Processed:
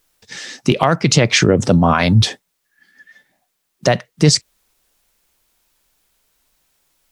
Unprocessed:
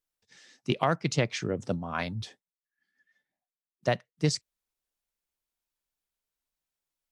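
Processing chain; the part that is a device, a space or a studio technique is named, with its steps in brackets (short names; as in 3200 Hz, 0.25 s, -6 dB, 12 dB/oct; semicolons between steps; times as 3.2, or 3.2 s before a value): loud club master (compressor 2:1, threshold -29 dBFS, peak gain reduction 5.5 dB; hard clip -16.5 dBFS, distortion -34 dB; maximiser +25.5 dB); gain -1 dB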